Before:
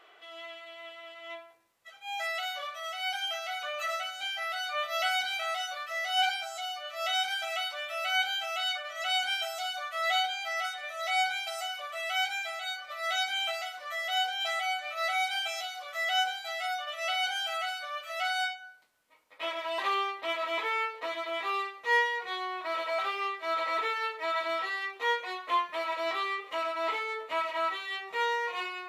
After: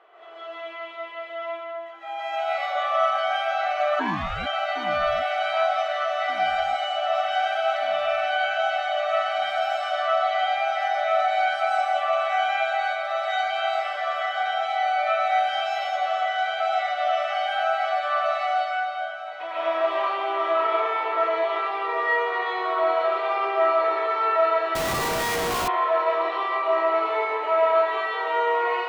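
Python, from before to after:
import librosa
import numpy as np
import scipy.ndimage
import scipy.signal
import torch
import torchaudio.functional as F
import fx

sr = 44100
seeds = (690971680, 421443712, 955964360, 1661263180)

p1 = fx.over_compress(x, sr, threshold_db=-36.0, ratio=-1.0)
p2 = x + (p1 * 10.0 ** (1.0 / 20.0))
p3 = fx.bandpass_q(p2, sr, hz=690.0, q=0.94)
p4 = fx.rev_freeverb(p3, sr, rt60_s=2.3, hf_ratio=0.9, predelay_ms=90, drr_db=-9.5)
p5 = fx.ring_mod(p4, sr, carrier_hz=fx.line((3.99, 310.0), (4.45, 860.0)), at=(3.99, 4.45), fade=0.02)
p6 = p5 + fx.echo_alternate(p5, sr, ms=763, hz=870.0, feedback_pct=60, wet_db=-9.5, dry=0)
p7 = fx.schmitt(p6, sr, flips_db=-28.0, at=(24.75, 25.68))
y = p7 * 10.0 ** (-3.0 / 20.0)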